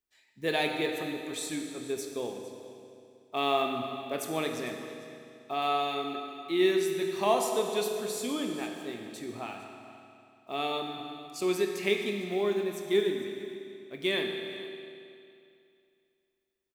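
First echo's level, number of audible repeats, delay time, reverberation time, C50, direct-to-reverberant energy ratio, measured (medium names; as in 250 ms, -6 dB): -18.0 dB, 1, 454 ms, 2.5 s, 4.0 dB, 3.0 dB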